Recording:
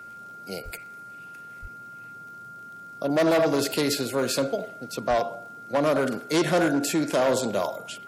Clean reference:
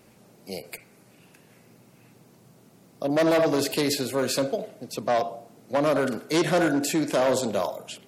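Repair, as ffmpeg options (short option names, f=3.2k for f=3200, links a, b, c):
-filter_complex "[0:a]adeclick=t=4,bandreject=f=1.4k:w=30,asplit=3[a][b][c];[a]afade=t=out:st=0.64:d=0.02[d];[b]highpass=f=140:w=0.5412,highpass=f=140:w=1.3066,afade=t=in:st=0.64:d=0.02,afade=t=out:st=0.76:d=0.02[e];[c]afade=t=in:st=0.76:d=0.02[f];[d][e][f]amix=inputs=3:normalize=0,asplit=3[g][h][i];[g]afade=t=out:st=1.61:d=0.02[j];[h]highpass=f=140:w=0.5412,highpass=f=140:w=1.3066,afade=t=in:st=1.61:d=0.02,afade=t=out:st=1.73:d=0.02[k];[i]afade=t=in:st=1.73:d=0.02[l];[j][k][l]amix=inputs=3:normalize=0,asplit=3[m][n][o];[m]afade=t=out:st=5.09:d=0.02[p];[n]highpass=f=140:w=0.5412,highpass=f=140:w=1.3066,afade=t=in:st=5.09:d=0.02,afade=t=out:st=5.21:d=0.02[q];[o]afade=t=in:st=5.21:d=0.02[r];[p][q][r]amix=inputs=3:normalize=0"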